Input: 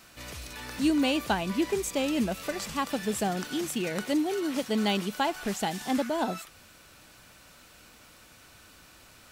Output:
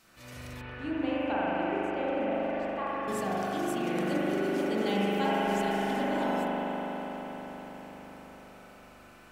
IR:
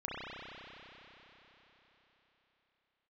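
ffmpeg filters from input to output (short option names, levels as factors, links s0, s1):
-filter_complex "[0:a]asettb=1/sr,asplit=3[s0][s1][s2];[s0]atrim=end=0.614[s3];[s1]atrim=start=0.61:end=3.08,asetpts=PTS-STARTPTS,afade=t=in:d=0.004:c=qsin,afade=t=out:st=2.466:d=0.004:c=qsin,acrossover=split=330 2700:gain=0.251 1 0.0708[s4][s5][s6];[s4][s5][s6]amix=inputs=3:normalize=0[s7];[s2]atrim=start=3.076[s8];[s3][s7]acrossfade=d=0.004:c1=hsin:c2=qsin[s9];[s9][s8]acrossfade=d=0.004:c1=qsin:c2=hsin[s10];[1:a]atrim=start_sample=2205,asetrate=33957,aresample=44100[s11];[s10][s11]afir=irnorm=-1:irlink=0,volume=0.501"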